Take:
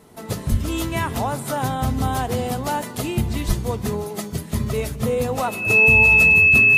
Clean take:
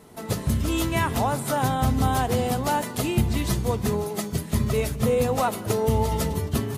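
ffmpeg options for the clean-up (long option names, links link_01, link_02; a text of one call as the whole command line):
ffmpeg -i in.wav -filter_complex "[0:a]bandreject=frequency=2600:width=30,asplit=3[link_01][link_02][link_03];[link_01]afade=type=out:start_time=0.5:duration=0.02[link_04];[link_02]highpass=frequency=140:width=0.5412,highpass=frequency=140:width=1.3066,afade=type=in:start_time=0.5:duration=0.02,afade=type=out:start_time=0.62:duration=0.02[link_05];[link_03]afade=type=in:start_time=0.62:duration=0.02[link_06];[link_04][link_05][link_06]amix=inputs=3:normalize=0,asplit=3[link_07][link_08][link_09];[link_07]afade=type=out:start_time=3.47:duration=0.02[link_10];[link_08]highpass=frequency=140:width=0.5412,highpass=frequency=140:width=1.3066,afade=type=in:start_time=3.47:duration=0.02,afade=type=out:start_time=3.59:duration=0.02[link_11];[link_09]afade=type=in:start_time=3.59:duration=0.02[link_12];[link_10][link_11][link_12]amix=inputs=3:normalize=0" out.wav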